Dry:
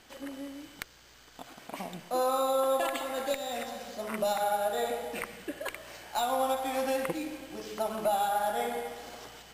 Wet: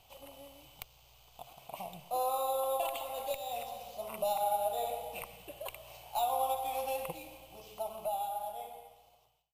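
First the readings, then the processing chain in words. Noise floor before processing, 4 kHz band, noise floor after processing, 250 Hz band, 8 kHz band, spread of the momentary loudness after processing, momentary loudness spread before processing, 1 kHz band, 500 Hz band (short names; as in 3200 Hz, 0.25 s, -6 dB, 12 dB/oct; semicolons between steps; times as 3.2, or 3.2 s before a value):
-56 dBFS, -6.0 dB, -64 dBFS, -17.0 dB, -5.0 dB, 19 LU, 16 LU, -3.0 dB, -6.0 dB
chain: ending faded out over 2.59 s; EQ curve 140 Hz 0 dB, 260 Hz -21 dB, 730 Hz 0 dB, 1100 Hz -6 dB, 1700 Hz -25 dB, 2600 Hz -2 dB, 4700 Hz -9 dB, 7700 Hz -8 dB, 12000 Hz +2 dB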